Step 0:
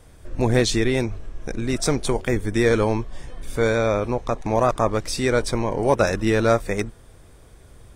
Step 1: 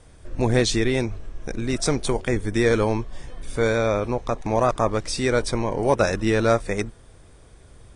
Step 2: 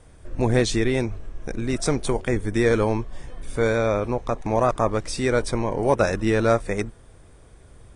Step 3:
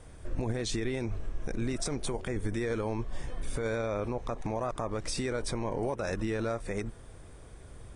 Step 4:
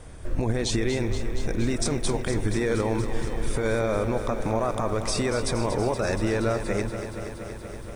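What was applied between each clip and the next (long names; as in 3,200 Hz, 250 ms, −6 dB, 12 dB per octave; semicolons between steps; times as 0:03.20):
elliptic low-pass filter 9,900 Hz, stop band 40 dB
parametric band 4,600 Hz −4 dB 1.5 octaves
downward compressor, threshold −24 dBFS, peak gain reduction 10.5 dB; brickwall limiter −23 dBFS, peak gain reduction 9.5 dB
feedback echo at a low word length 236 ms, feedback 80%, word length 10 bits, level −10 dB; level +6.5 dB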